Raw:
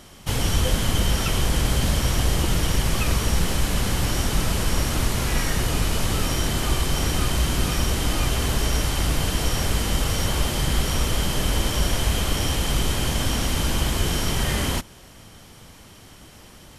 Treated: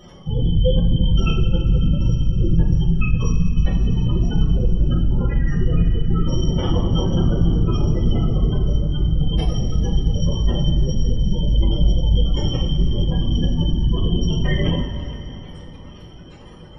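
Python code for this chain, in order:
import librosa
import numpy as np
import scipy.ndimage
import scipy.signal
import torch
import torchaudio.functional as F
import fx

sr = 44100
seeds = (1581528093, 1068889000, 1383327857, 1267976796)

y = fx.cycle_switch(x, sr, every=2, mode='inverted', at=(6.58, 8.46))
y = fx.spec_gate(y, sr, threshold_db=-15, keep='strong')
y = fx.rev_double_slope(y, sr, seeds[0], early_s=0.43, late_s=4.1, knee_db=-16, drr_db=-6.5)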